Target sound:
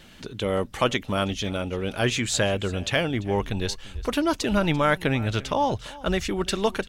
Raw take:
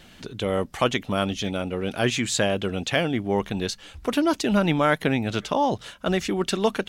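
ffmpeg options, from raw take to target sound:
-af "bandreject=f=720:w=14,aecho=1:1:342:0.1,asubboost=boost=5.5:cutoff=86"

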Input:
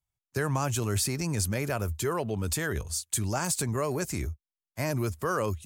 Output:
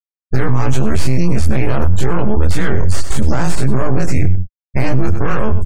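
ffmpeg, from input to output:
-filter_complex "[0:a]afftfilt=real='re':imag='-im':win_size=2048:overlap=0.75,lowshelf=f=65:g=-9.5,aeval=exprs='max(val(0),0)':c=same,areverse,acompressor=mode=upward:threshold=0.00251:ratio=2.5,areverse,afftfilt=real='re*gte(hypot(re,im),0.00355)':imag='im*gte(hypot(re,im),0.00355)':win_size=1024:overlap=0.75,asplit=2[s0][s1];[s1]aecho=0:1:97:0.126[s2];[s0][s2]amix=inputs=2:normalize=0,acompressor=threshold=0.01:ratio=6,aemphasis=mode=reproduction:type=bsi,alimiter=level_in=50.1:limit=0.891:release=50:level=0:latency=1,volume=0.891"

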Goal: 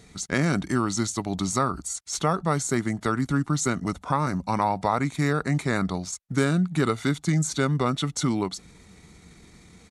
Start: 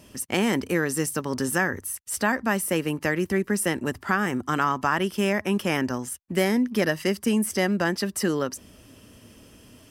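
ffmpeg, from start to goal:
-af "asetrate=32097,aresample=44100,atempo=1.37395"

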